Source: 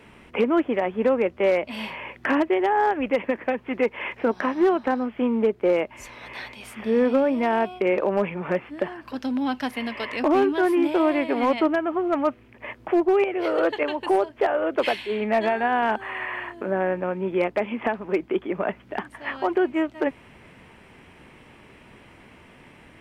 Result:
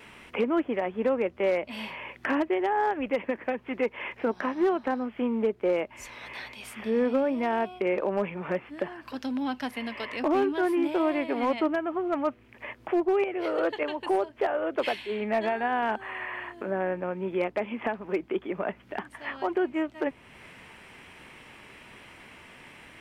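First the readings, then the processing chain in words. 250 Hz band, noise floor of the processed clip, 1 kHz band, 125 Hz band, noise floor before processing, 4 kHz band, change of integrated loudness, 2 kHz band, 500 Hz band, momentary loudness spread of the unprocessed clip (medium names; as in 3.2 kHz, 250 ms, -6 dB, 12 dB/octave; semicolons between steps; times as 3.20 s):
-5.0 dB, -54 dBFS, -5.0 dB, -5.0 dB, -51 dBFS, -4.5 dB, -5.0 dB, -5.0 dB, -5.0 dB, 11 LU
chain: vibrato 1.1 Hz 13 cents; tape noise reduction on one side only encoder only; trim -5 dB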